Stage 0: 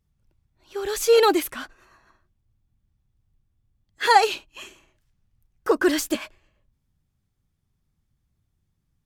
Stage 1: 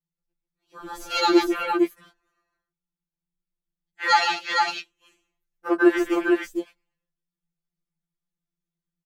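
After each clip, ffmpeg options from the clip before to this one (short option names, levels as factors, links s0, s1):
-af "aecho=1:1:141|458:0.422|0.708,afwtdn=0.0282,afftfilt=real='re*2.83*eq(mod(b,8),0)':imag='im*2.83*eq(mod(b,8),0)':win_size=2048:overlap=0.75,volume=1.5"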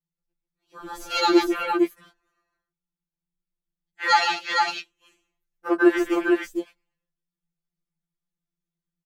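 -af anull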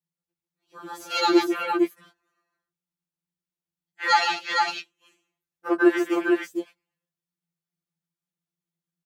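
-af "highpass=f=49:w=0.5412,highpass=f=49:w=1.3066,volume=0.891"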